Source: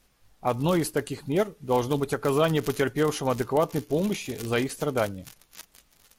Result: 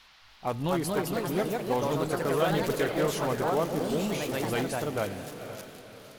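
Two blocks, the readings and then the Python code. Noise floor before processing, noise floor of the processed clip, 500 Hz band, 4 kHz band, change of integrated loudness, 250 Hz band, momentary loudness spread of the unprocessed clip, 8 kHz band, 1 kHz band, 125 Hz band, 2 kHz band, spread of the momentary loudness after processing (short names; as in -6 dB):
-64 dBFS, -56 dBFS, -2.5 dB, -1.5 dB, -2.5 dB, -3.0 dB, 7 LU, -1.5 dB, -1.0 dB, -3.5 dB, -1.5 dB, 13 LU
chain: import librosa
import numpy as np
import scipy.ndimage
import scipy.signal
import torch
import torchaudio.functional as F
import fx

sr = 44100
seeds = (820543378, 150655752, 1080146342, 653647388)

p1 = fx.echo_diffused(x, sr, ms=500, feedback_pct=46, wet_db=-12.0)
p2 = 10.0 ** (-28.0 / 20.0) * (np.abs((p1 / 10.0 ** (-28.0 / 20.0) + 3.0) % 4.0 - 2.0) - 1.0)
p3 = p1 + (p2 * 10.0 ** (-11.0 / 20.0))
p4 = fx.echo_pitch(p3, sr, ms=303, semitones=2, count=3, db_per_echo=-3.0)
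p5 = fx.dmg_noise_band(p4, sr, seeds[0], low_hz=710.0, high_hz=4700.0, level_db=-52.0)
y = p5 * 10.0 ** (-5.5 / 20.0)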